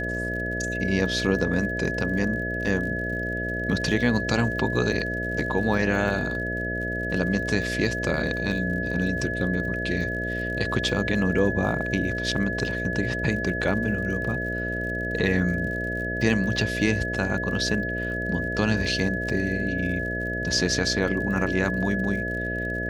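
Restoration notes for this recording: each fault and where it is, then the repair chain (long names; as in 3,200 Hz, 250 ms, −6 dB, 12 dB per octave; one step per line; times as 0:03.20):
mains buzz 60 Hz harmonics 11 −31 dBFS
surface crackle 57 per second −35 dBFS
whistle 1,700 Hz −29 dBFS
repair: click removal
hum removal 60 Hz, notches 11
notch filter 1,700 Hz, Q 30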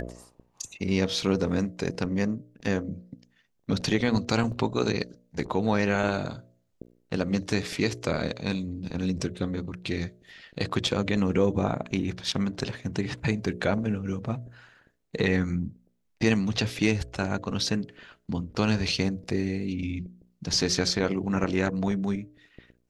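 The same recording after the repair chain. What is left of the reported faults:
none of them is left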